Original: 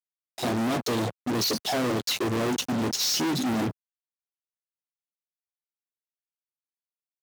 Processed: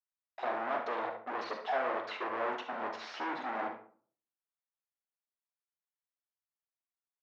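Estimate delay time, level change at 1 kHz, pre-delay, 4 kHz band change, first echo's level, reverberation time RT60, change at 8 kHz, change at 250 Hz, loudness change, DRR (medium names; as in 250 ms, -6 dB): 71 ms, -1.5 dB, 39 ms, -20.0 dB, -10.0 dB, 0.45 s, under -30 dB, -19.0 dB, -10.0 dB, 5.0 dB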